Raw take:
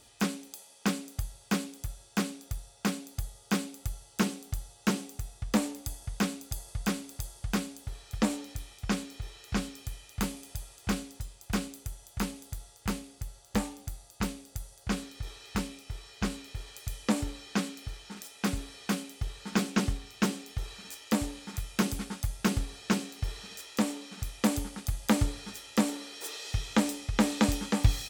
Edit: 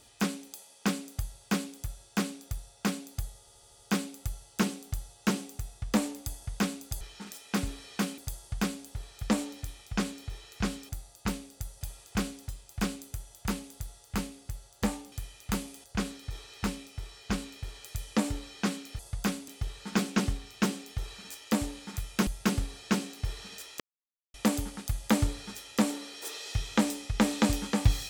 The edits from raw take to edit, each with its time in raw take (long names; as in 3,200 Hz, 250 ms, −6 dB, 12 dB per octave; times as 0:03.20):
0:03.39: stutter 0.08 s, 6 plays
0:06.61–0:07.10: swap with 0:17.91–0:19.08
0:09.81–0:10.53: swap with 0:13.84–0:14.76
0:21.87–0:22.26: remove
0:23.79–0:24.33: silence